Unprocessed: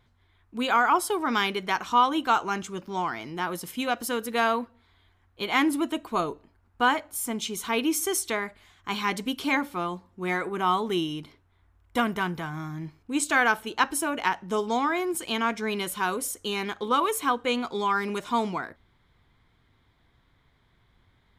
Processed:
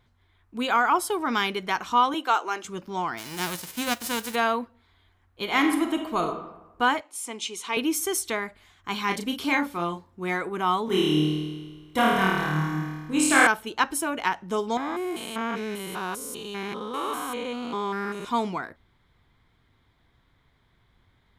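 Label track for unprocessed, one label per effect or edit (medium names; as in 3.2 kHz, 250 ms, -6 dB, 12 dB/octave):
2.140000	2.650000	high-pass 330 Hz 24 dB/octave
3.170000	4.340000	formants flattened exponent 0.3
5.420000	6.260000	reverb throw, RT60 1 s, DRR 4.5 dB
7.010000	7.770000	cabinet simulation 390–9900 Hz, peaks and dips at 630 Hz -6 dB, 1.5 kHz -7 dB, 2.6 kHz +4 dB
9.060000	10.210000	doubling 35 ms -5.5 dB
10.850000	13.470000	flutter echo walls apart 4.5 m, dies away in 1.4 s
14.770000	18.250000	spectrogram pixelated in time every 200 ms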